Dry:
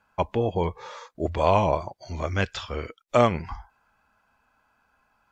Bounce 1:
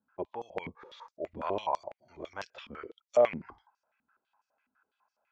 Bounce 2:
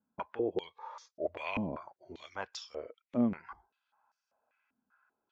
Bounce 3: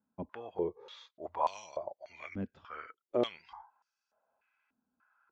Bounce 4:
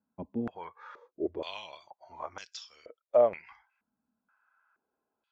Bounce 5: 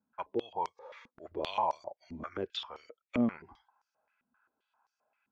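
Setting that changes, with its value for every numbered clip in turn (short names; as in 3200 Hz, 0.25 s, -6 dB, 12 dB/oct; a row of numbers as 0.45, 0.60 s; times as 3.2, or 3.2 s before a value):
stepped band-pass, rate: 12, 5.1, 3.4, 2.1, 7.6 Hz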